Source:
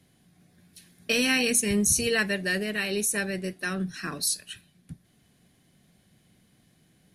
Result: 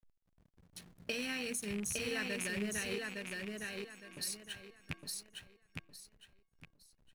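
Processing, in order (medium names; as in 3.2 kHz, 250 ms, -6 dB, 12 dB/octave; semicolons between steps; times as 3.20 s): rattle on loud lows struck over -34 dBFS, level -18 dBFS; compression 4:1, threshold -41 dBFS, peak gain reduction 18.5 dB; hysteresis with a dead band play -47 dBFS; 2.98–4.17 s: inharmonic resonator 330 Hz, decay 0.73 s, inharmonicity 0.03; on a send: feedback delay 861 ms, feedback 27%, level -3 dB; on the sum: trim +1.5 dB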